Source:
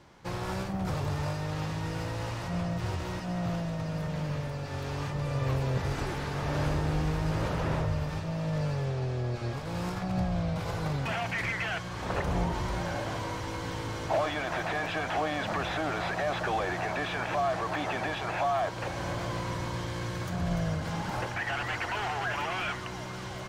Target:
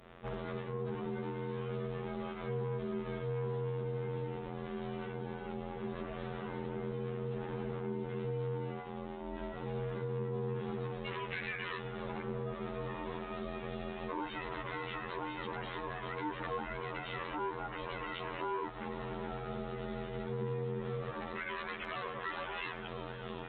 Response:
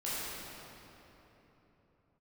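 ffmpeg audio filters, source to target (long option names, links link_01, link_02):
-af "acompressor=threshold=-33dB:ratio=6,afftfilt=real='hypot(re,im)*cos(PI*b)':imag='0':win_size=2048:overlap=0.75,aeval=exprs='val(0)+0.000355*(sin(2*PI*60*n/s)+sin(2*PI*2*60*n/s)/2+sin(2*PI*3*60*n/s)/3+sin(2*PI*4*60*n/s)/4+sin(2*PI*5*60*n/s)/5)':channel_layout=same,aeval=exprs='val(0)*sin(2*PI*300*n/s)':channel_layout=same,aresample=8000,asoftclip=type=tanh:threshold=-35dB,aresample=44100,volume=6.5dB" -ar 48000 -c:a aac -b:a 48k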